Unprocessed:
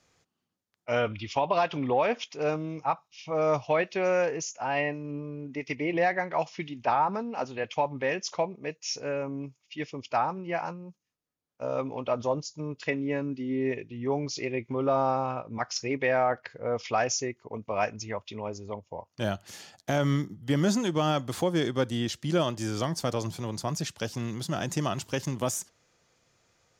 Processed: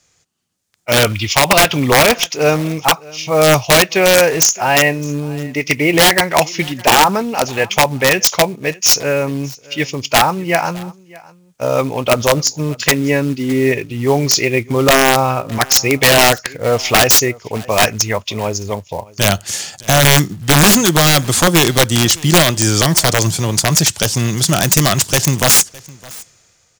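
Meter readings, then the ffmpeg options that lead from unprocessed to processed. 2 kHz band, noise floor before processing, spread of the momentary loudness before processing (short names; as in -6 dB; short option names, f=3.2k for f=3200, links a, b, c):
+19.5 dB, -81 dBFS, 11 LU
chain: -filter_complex "[0:a]equalizer=f=250:t=o:w=1:g=-5,equalizer=f=500:t=o:w=1:g=-3,equalizer=f=1k:t=o:w=1:g=-4,equalizer=f=8k:t=o:w=1:g=9,aeval=exprs='(mod(11.9*val(0)+1,2)-1)/11.9':c=same,acrusher=bits=5:mode=log:mix=0:aa=0.000001,dynaudnorm=f=160:g=9:m=12dB,asplit=2[a][b];[b]aecho=0:1:611:0.0708[c];[a][c]amix=inputs=2:normalize=0,volume=7dB"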